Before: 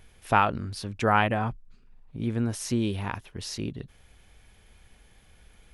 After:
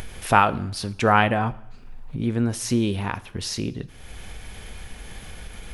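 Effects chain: upward compressor, threshold -29 dBFS; two-slope reverb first 0.65 s, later 2.6 s, from -26 dB, DRR 14.5 dB; gain +4.5 dB

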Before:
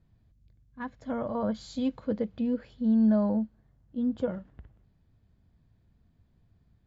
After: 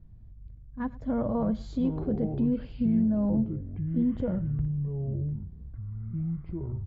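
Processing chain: tilt -3.5 dB/oct; limiter -20.5 dBFS, peak gain reduction 12 dB; on a send: echo 0.104 s -20.5 dB; on the sum: echoes that change speed 0.2 s, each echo -7 st, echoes 3, each echo -6 dB

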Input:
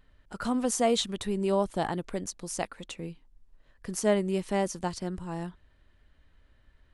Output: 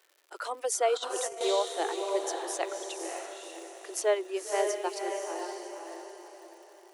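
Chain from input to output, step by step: reverb removal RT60 1.6 s; diffused feedback echo 0.548 s, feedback 41%, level -3.5 dB; crackle 190/s -48 dBFS; steep high-pass 320 Hz 96 dB/oct; 0.97–1.41 negative-ratio compressor -34 dBFS, ratio -0.5

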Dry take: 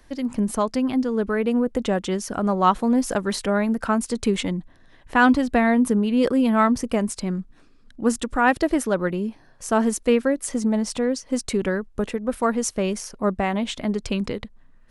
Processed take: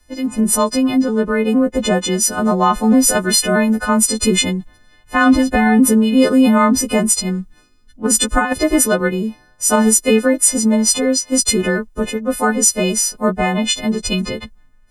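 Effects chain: frequency quantiser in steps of 3 st; low shelf 200 Hz +4 dB; 8.05–8.53 negative-ratio compressor -19 dBFS, ratio -0.5; maximiser +9 dB; three-band expander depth 40%; gain -3 dB

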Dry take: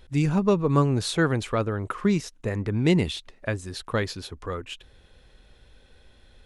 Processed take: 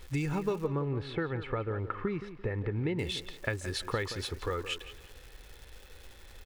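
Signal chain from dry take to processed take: bell 2000 Hz +5 dB 0.88 oct; comb 2.3 ms, depth 44%; compressor 6:1, threshold -29 dBFS, peak gain reduction 13.5 dB; crackle 420/s -43 dBFS; 0.67–2.99 air absorption 420 m; tape echo 0.172 s, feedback 33%, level -10.5 dB, low-pass 2800 Hz

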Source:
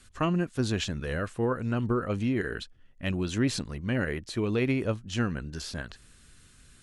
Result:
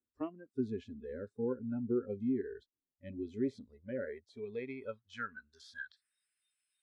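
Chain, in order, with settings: spectral noise reduction 23 dB; band-pass sweep 330 Hz -> 2500 Hz, 3.08–6.5

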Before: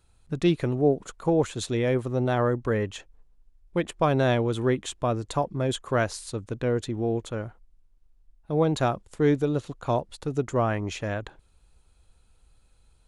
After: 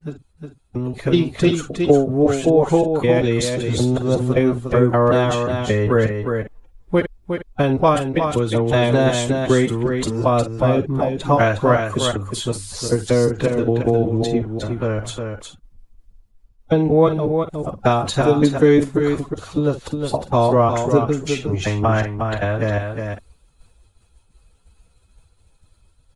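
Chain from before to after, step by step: slices in reverse order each 95 ms, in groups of 4; expander -53 dBFS; on a send: echo 0.18 s -6 dB; on the sum: AGC gain up to 10.5 dB; plain phase-vocoder stretch 2×; gain +2 dB

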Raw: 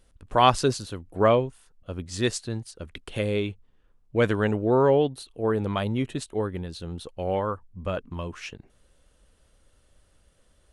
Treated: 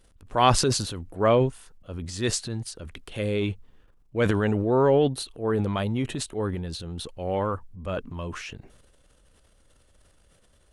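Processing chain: transient shaper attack -4 dB, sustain +8 dB

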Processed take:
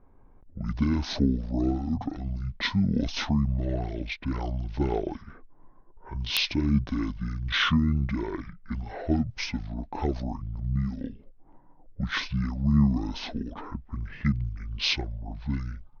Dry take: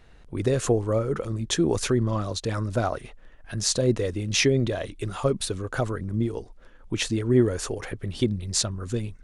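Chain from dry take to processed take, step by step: speed mistake 78 rpm record played at 45 rpm; low-pass opened by the level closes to 800 Hz, open at -21 dBFS; wrapped overs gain 8 dB; gain -2.5 dB

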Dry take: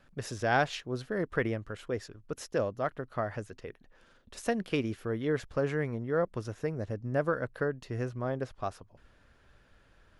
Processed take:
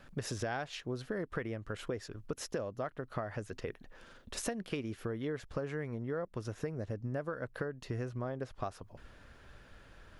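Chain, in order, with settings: compressor 10:1, threshold -40 dBFS, peak gain reduction 18.5 dB; gain +6 dB

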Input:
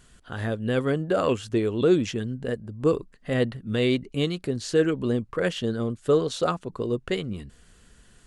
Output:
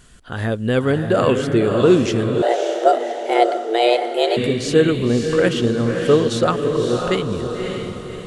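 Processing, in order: diffused feedback echo 0.58 s, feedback 45%, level -4.5 dB; 2.42–4.37 frequency shift +230 Hz; gain +6.5 dB

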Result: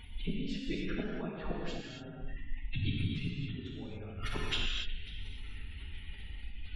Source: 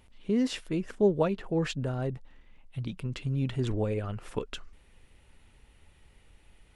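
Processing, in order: phase scrambler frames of 50 ms; notches 60/120/180/240/300/360 Hz; flipped gate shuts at -25 dBFS, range -25 dB; graphic EQ 125/500/1000/4000/8000 Hz -7/-10/-4/+4/-4 dB; compressor, threshold -45 dBFS, peak gain reduction 10.5 dB; delay with a stepping band-pass 0.183 s, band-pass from 1600 Hz, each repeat 0.7 oct, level -12 dB; spectral gate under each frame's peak -25 dB strong; non-linear reverb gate 0.31 s flat, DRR -3 dB; gain +12.5 dB

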